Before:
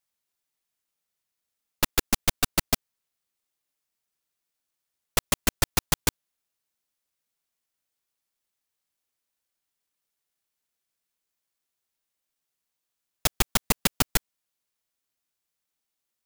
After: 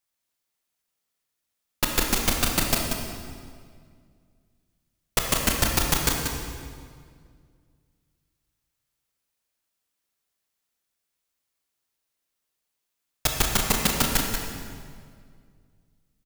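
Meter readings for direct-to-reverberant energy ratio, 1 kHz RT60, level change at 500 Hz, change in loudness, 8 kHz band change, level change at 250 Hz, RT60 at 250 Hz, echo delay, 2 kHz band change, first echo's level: −0.5 dB, 1.9 s, +3.5 dB, +2.0 dB, +2.5 dB, +3.5 dB, 2.4 s, 185 ms, +3.0 dB, −6.5 dB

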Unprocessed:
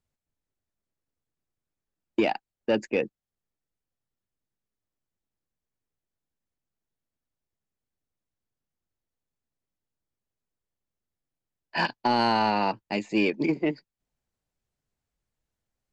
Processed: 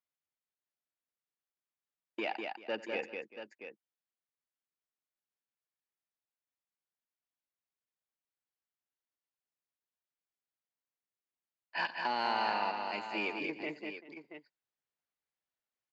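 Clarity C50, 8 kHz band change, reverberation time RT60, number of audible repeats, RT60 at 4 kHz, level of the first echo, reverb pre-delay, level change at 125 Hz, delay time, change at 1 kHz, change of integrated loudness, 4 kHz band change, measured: no reverb audible, can't be measured, no reverb audible, 4, no reverb audible, −18.5 dB, no reverb audible, −20.0 dB, 90 ms, −7.5 dB, −9.5 dB, −7.0 dB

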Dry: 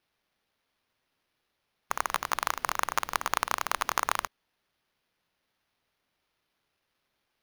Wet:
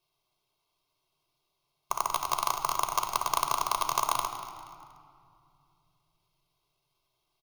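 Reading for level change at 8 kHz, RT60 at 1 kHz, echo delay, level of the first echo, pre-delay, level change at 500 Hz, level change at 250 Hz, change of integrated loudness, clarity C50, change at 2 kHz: +2.0 dB, 2.3 s, 238 ms, −14.5 dB, 4 ms, +0.5 dB, −2.0 dB, +0.5 dB, 8.0 dB, −8.5 dB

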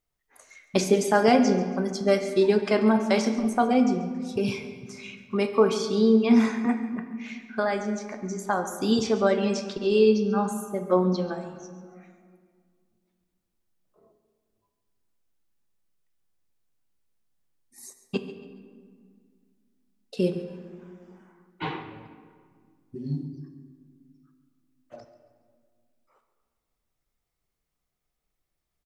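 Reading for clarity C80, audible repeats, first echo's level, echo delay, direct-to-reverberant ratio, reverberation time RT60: 9.5 dB, 2, −15.5 dB, 139 ms, 7.0 dB, 1.9 s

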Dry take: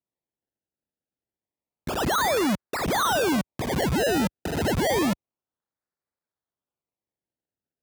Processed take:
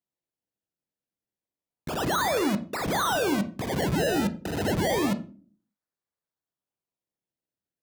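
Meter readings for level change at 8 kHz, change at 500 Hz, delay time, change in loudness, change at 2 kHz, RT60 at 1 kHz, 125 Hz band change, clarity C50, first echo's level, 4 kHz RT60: −3.0 dB, −2.0 dB, no echo audible, −2.0 dB, −2.5 dB, 0.35 s, −1.0 dB, 15.5 dB, no echo audible, 0.30 s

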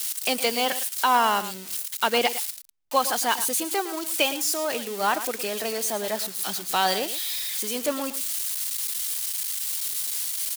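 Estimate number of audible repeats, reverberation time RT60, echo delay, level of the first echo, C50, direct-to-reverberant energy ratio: 1, no reverb audible, 111 ms, −13.0 dB, no reverb audible, no reverb audible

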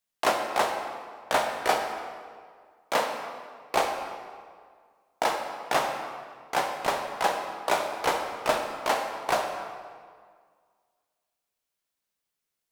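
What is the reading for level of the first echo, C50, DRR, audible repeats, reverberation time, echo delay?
no echo audible, 5.0 dB, 2.5 dB, no echo audible, 1.9 s, no echo audible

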